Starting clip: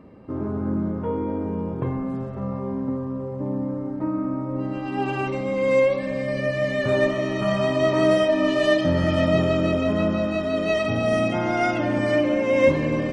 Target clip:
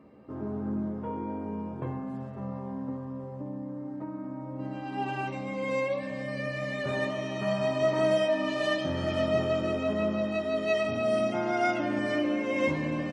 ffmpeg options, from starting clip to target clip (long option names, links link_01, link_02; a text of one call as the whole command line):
ffmpeg -i in.wav -filter_complex "[0:a]highpass=frequency=150:poles=1,asplit=2[link_01][link_02];[link_02]adelay=14,volume=-4.5dB[link_03];[link_01][link_03]amix=inputs=2:normalize=0,asettb=1/sr,asplit=3[link_04][link_05][link_06];[link_04]atrim=end=3.224[link_07];[link_05]atrim=start=3.22:end=4.6,asetpts=PTS-STARTPTS,afade=type=in:duration=0.004:curve=qsin,afade=type=out:start_time=1.376:duration=0.004:curve=qsin,acompressor=threshold=-27dB:ratio=4[link_08];[link_06]atrim=start=4.596[link_09];[link_07][link_08]acrossfade=duration=0.004:curve1=hsin:curve2=qsin[link_10];[link_10][link_09]acrossfade=duration=0.004:curve1=qsin:curve2=hsin,volume=-7dB" out.wav